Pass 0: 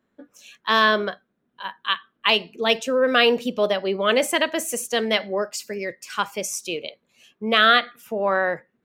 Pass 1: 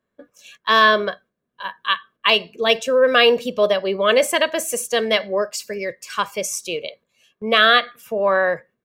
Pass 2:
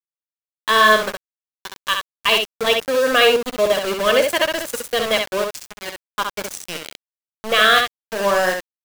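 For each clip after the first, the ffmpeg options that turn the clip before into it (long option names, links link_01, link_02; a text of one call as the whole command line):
ffmpeg -i in.wav -af "agate=range=-7dB:threshold=-49dB:ratio=16:detection=peak,aecho=1:1:1.8:0.42,volume=2dB" out.wav
ffmpeg -i in.wav -filter_complex "[0:a]aeval=exprs='val(0)*gte(abs(val(0)),0.1)':channel_layout=same,asplit=2[link_01][link_02];[link_02]aecho=0:1:11|65:0.178|0.596[link_03];[link_01][link_03]amix=inputs=2:normalize=0,volume=-1dB" out.wav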